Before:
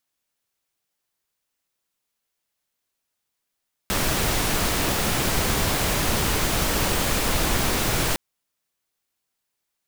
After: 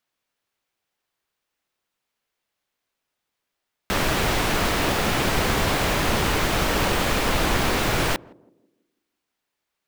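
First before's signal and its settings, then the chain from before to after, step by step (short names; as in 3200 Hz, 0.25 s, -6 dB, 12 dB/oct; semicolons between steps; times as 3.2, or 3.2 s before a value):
noise pink, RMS -22.5 dBFS 4.26 s
narrowing echo 0.165 s, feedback 45%, band-pass 300 Hz, level -19 dB; in parallel at -7 dB: sample-rate reducer 18000 Hz; on the sum: tone controls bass -3 dB, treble -5 dB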